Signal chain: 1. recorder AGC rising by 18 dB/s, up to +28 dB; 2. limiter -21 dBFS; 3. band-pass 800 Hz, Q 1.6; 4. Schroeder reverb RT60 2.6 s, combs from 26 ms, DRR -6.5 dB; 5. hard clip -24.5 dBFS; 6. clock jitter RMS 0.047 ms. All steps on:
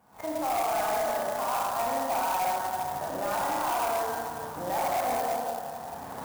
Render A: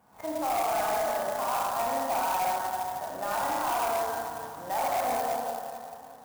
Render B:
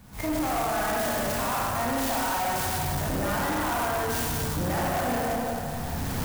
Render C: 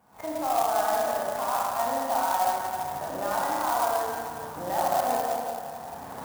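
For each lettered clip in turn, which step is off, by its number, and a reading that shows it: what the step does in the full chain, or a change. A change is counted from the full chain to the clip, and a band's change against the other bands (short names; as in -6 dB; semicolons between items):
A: 1, 125 Hz band -3.5 dB; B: 3, 125 Hz band +11.0 dB; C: 5, distortion -11 dB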